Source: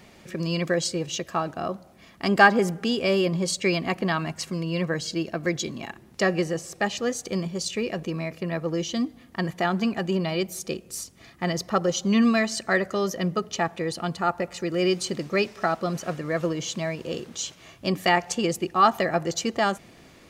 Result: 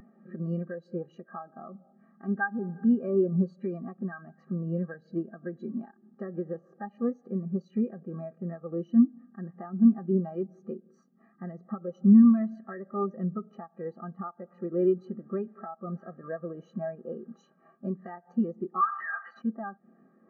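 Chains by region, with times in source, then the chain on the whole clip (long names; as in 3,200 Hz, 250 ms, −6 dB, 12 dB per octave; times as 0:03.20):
0:18.81–0:19.42: high-pass filter 1,200 Hz 24 dB per octave + mid-hump overdrive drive 31 dB, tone 2,900 Hz, clips at −10.5 dBFS
whole clip: compressor on every frequency bin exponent 0.4; downward compressor 16 to 1, threshold −17 dBFS; every bin expanded away from the loudest bin 4 to 1; level −7.5 dB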